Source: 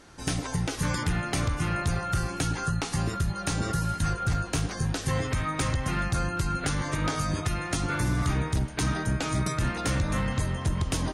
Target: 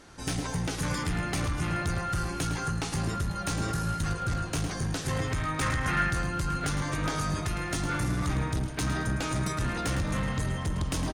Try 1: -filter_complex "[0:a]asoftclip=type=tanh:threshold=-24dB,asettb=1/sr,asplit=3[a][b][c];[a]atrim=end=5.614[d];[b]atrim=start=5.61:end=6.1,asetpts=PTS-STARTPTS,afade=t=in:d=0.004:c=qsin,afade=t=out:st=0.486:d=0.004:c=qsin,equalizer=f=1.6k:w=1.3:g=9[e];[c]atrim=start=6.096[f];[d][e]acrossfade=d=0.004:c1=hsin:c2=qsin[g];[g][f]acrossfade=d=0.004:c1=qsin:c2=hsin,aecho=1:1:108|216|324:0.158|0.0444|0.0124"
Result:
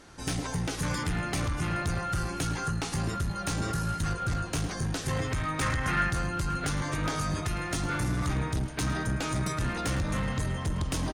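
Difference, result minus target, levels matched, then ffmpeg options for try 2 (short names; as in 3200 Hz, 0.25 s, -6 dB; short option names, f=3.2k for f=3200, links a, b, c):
echo-to-direct -6 dB
-filter_complex "[0:a]asoftclip=type=tanh:threshold=-24dB,asettb=1/sr,asplit=3[a][b][c];[a]atrim=end=5.614[d];[b]atrim=start=5.61:end=6.1,asetpts=PTS-STARTPTS,afade=t=in:d=0.004:c=qsin,afade=t=out:st=0.486:d=0.004:c=qsin,equalizer=f=1.6k:w=1.3:g=9[e];[c]atrim=start=6.096[f];[d][e]acrossfade=d=0.004:c1=hsin:c2=qsin[g];[g][f]acrossfade=d=0.004:c1=qsin:c2=hsin,aecho=1:1:108|216|324:0.316|0.0885|0.0248"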